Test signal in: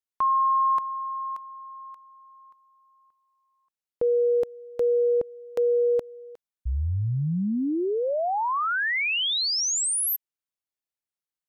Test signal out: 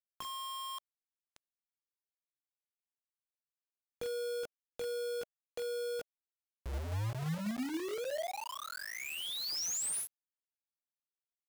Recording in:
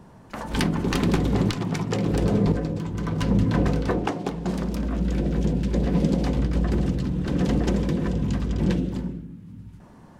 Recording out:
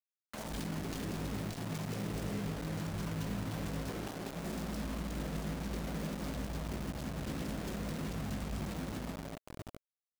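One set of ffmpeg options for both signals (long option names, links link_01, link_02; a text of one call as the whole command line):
ffmpeg -i in.wav -filter_complex "[0:a]aresample=22050,aresample=44100,bandreject=frequency=60:width_type=h:width=6,bandreject=frequency=120:width_type=h:width=6,bandreject=frequency=180:width_type=h:width=6,bandreject=frequency=240:width_type=h:width=6,bandreject=frequency=300:width_type=h:width=6,bandreject=frequency=360:width_type=h:width=6,acompressor=threshold=-27dB:ratio=12:attack=2.6:release=220:knee=6:detection=rms,asplit=2[link_01][link_02];[link_02]aecho=0:1:19|44:0.376|0.178[link_03];[link_01][link_03]amix=inputs=2:normalize=0,acrossover=split=460|4000[link_04][link_05][link_06];[link_05]acompressor=threshold=-57dB:ratio=1.5:attack=19:release=154:knee=2.83:detection=peak[link_07];[link_04][link_07][link_06]amix=inputs=3:normalize=0,acrusher=bits=5:mix=0:aa=0.000001,adynamicequalizer=threshold=0.00282:dfrequency=620:dqfactor=3.9:tfrequency=620:tqfactor=3.9:attack=5:release=100:ratio=0.375:range=2.5:mode=boostabove:tftype=bell,volume=-7dB" out.wav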